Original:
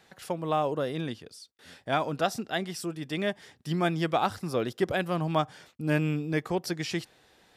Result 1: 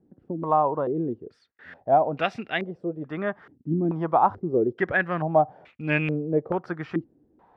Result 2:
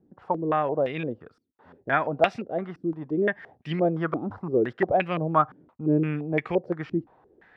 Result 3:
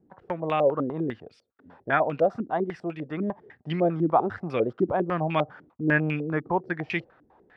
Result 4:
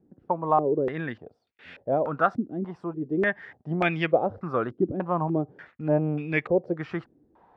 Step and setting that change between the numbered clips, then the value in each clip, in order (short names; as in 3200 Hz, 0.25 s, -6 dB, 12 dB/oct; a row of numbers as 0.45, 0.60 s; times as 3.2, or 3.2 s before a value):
stepped low-pass, rate: 2.3, 5.8, 10, 3.4 Hz